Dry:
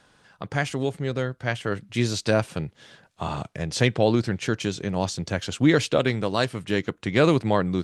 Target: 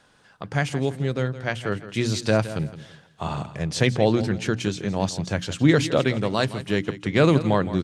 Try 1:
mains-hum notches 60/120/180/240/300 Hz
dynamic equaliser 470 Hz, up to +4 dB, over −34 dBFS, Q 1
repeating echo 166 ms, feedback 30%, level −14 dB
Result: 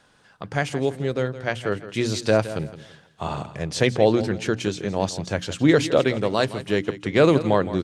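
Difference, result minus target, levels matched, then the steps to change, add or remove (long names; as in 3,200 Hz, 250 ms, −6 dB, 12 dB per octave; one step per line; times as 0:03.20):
125 Hz band −4.0 dB
change: dynamic equaliser 150 Hz, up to +4 dB, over −34 dBFS, Q 1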